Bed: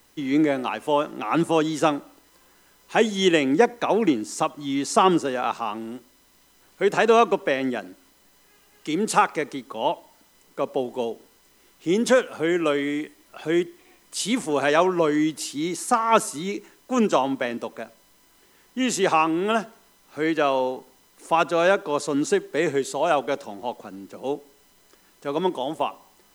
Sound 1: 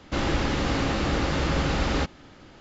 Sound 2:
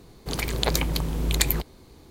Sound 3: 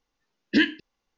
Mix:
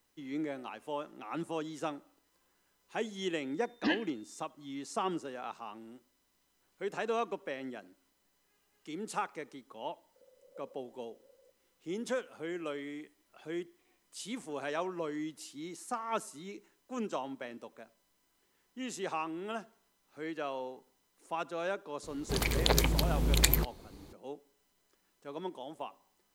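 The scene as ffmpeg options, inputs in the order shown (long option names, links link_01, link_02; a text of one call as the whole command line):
ffmpeg -i bed.wav -i cue0.wav -i cue1.wav -i cue2.wav -filter_complex "[2:a]asplit=2[link_01][link_02];[0:a]volume=-16.5dB[link_03];[3:a]aeval=exprs='val(0)+0.00178*sin(2*PI*3600*n/s)':channel_layout=same[link_04];[link_01]asuperpass=centerf=530:order=4:qfactor=7.8[link_05];[link_04]atrim=end=1.17,asetpts=PTS-STARTPTS,volume=-11dB,afade=type=in:duration=0.004:curve=hsin,afade=type=out:start_time=1.166:duration=0.004:curve=hsin,adelay=3300[link_06];[link_05]atrim=end=2.1,asetpts=PTS-STARTPTS,volume=-16.5dB,afade=type=in:duration=0.004:curve=hsin,afade=type=out:start_time=2.096:duration=0.004:curve=hsin,adelay=9890[link_07];[link_02]atrim=end=2.1,asetpts=PTS-STARTPTS,volume=-3dB,afade=type=in:duration=0.004:curve=hsin,afade=type=out:start_time=2.096:duration=0.004:curve=hsin,adelay=22030[link_08];[link_03][link_06][link_07][link_08]amix=inputs=4:normalize=0" out.wav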